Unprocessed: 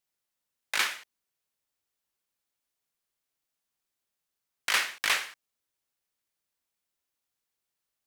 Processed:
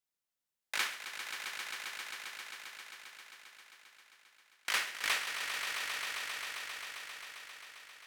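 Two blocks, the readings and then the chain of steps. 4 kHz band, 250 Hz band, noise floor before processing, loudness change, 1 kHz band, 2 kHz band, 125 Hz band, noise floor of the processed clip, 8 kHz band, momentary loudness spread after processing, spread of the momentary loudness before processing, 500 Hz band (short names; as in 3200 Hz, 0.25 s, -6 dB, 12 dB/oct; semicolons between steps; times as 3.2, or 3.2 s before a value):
-3.0 dB, -3.5 dB, under -85 dBFS, -9.0 dB, -3.0 dB, -3.0 dB, n/a, under -85 dBFS, -3.0 dB, 18 LU, 14 LU, -3.0 dB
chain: swelling echo 0.133 s, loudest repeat 5, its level -9 dB; gain -6.5 dB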